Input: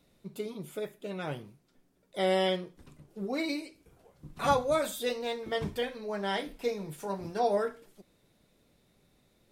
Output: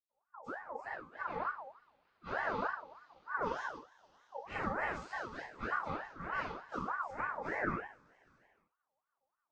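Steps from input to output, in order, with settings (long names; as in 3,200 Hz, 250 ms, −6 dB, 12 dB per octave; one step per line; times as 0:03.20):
every partial snapped to a pitch grid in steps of 3 semitones
brickwall limiter −21 dBFS, peak gain reduction 9.5 dB
noise reduction from a noise print of the clip's start 19 dB
cochlear-implant simulation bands 12
convolution reverb, pre-delay 76 ms
ring modulator whose carrier an LFO sweeps 1,000 Hz, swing 35%, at 3.3 Hz
level +13 dB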